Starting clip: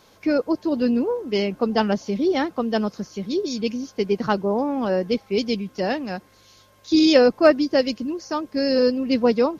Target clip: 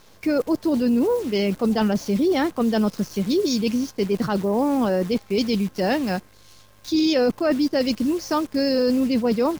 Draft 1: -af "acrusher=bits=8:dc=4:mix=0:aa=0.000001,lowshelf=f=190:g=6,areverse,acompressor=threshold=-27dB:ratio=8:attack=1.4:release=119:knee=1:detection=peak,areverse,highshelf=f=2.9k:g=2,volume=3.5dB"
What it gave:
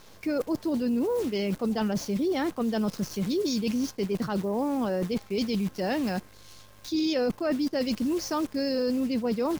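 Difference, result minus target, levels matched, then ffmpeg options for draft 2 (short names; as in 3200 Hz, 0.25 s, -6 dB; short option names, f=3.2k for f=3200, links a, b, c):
compressor: peak gain reduction +7 dB
-af "acrusher=bits=8:dc=4:mix=0:aa=0.000001,lowshelf=f=190:g=6,areverse,acompressor=threshold=-19dB:ratio=8:attack=1.4:release=119:knee=1:detection=peak,areverse,highshelf=f=2.9k:g=2,volume=3.5dB"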